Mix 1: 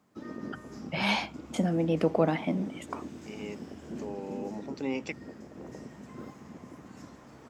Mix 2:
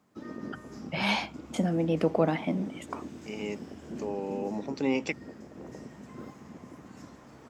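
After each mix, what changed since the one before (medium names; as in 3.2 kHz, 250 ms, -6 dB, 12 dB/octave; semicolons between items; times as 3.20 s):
second voice +5.0 dB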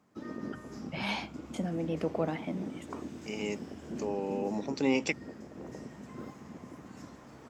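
first voice -6.5 dB; second voice: add treble shelf 5.4 kHz +9.5 dB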